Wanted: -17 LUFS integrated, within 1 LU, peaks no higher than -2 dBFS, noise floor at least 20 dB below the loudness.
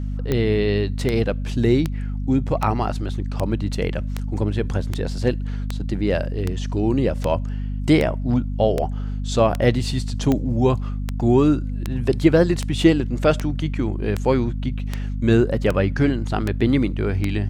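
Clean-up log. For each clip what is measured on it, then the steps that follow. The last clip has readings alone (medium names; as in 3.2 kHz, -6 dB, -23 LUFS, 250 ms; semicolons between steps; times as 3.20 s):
clicks found 23; hum 50 Hz; highest harmonic 250 Hz; hum level -23 dBFS; loudness -21.5 LUFS; peak level -3.0 dBFS; loudness target -17.0 LUFS
-> de-click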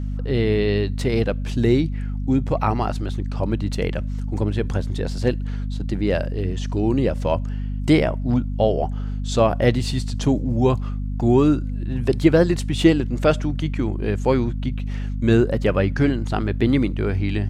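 clicks found 0; hum 50 Hz; highest harmonic 250 Hz; hum level -23 dBFS
-> de-hum 50 Hz, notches 5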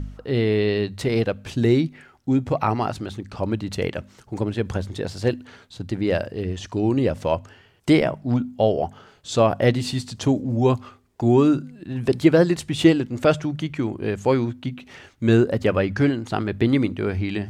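hum not found; loudness -22.5 LUFS; peak level -3.5 dBFS; loudness target -17.0 LUFS
-> trim +5.5 dB; peak limiter -2 dBFS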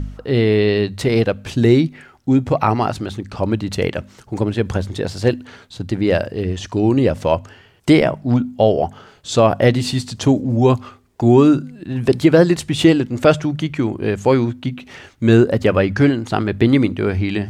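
loudness -17.0 LUFS; peak level -2.0 dBFS; noise floor -48 dBFS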